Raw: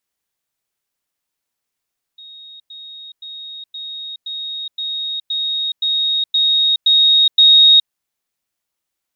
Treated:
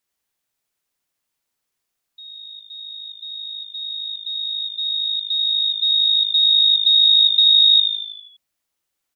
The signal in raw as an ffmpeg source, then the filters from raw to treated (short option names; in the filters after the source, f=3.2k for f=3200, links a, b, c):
-f lavfi -i "aevalsrc='pow(10,(-35.5+3*floor(t/0.52))/20)*sin(2*PI*3750*t)*clip(min(mod(t,0.52),0.42-mod(t,0.52))/0.005,0,1)':d=5.72:s=44100"
-filter_complex "[0:a]acompressor=threshold=-12dB:ratio=6,asplit=2[a][b];[b]asplit=7[c][d][e][f][g][h][i];[c]adelay=81,afreqshift=-53,volume=-7dB[j];[d]adelay=162,afreqshift=-106,volume=-11.7dB[k];[e]adelay=243,afreqshift=-159,volume=-16.5dB[l];[f]adelay=324,afreqshift=-212,volume=-21.2dB[m];[g]adelay=405,afreqshift=-265,volume=-25.9dB[n];[h]adelay=486,afreqshift=-318,volume=-30.7dB[o];[i]adelay=567,afreqshift=-371,volume=-35.4dB[p];[j][k][l][m][n][o][p]amix=inputs=7:normalize=0[q];[a][q]amix=inputs=2:normalize=0"